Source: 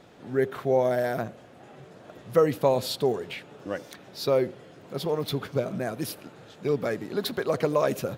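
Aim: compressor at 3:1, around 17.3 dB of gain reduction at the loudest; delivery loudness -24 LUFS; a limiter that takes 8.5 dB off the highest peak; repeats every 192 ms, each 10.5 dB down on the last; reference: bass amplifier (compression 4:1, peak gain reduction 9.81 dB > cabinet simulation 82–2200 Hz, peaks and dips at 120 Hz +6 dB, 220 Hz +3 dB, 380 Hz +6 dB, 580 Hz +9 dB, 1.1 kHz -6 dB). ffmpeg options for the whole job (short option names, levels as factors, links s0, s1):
-af "acompressor=threshold=0.01:ratio=3,alimiter=level_in=2.66:limit=0.0631:level=0:latency=1,volume=0.376,aecho=1:1:192|384|576:0.299|0.0896|0.0269,acompressor=threshold=0.00398:ratio=4,highpass=f=82:w=0.5412,highpass=f=82:w=1.3066,equalizer=f=120:t=q:w=4:g=6,equalizer=f=220:t=q:w=4:g=3,equalizer=f=380:t=q:w=4:g=6,equalizer=f=580:t=q:w=4:g=9,equalizer=f=1100:t=q:w=4:g=-6,lowpass=f=2200:w=0.5412,lowpass=f=2200:w=1.3066,volume=14.1"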